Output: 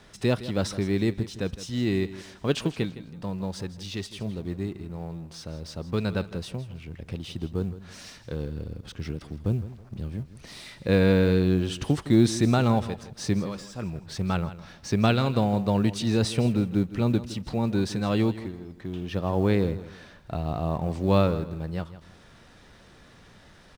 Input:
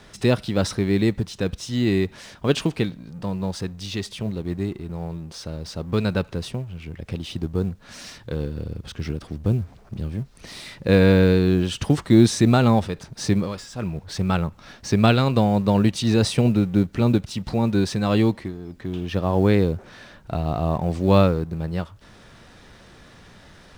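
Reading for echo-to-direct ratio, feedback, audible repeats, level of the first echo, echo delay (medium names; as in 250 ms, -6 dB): -14.5 dB, 28%, 2, -15.0 dB, 162 ms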